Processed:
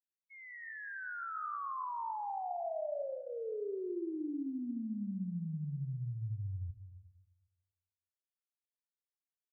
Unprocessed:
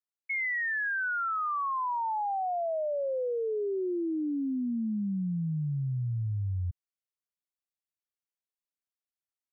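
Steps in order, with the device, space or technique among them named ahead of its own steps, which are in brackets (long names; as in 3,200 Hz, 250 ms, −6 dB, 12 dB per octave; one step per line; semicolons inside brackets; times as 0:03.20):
hearing-loss simulation (low-pass filter 1,700 Hz 12 dB per octave; downward expander −29 dBFS)
notch filter 500 Hz, Q 12
comb and all-pass reverb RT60 1.2 s, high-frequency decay 0.9×, pre-delay 45 ms, DRR 5.5 dB
level −6.5 dB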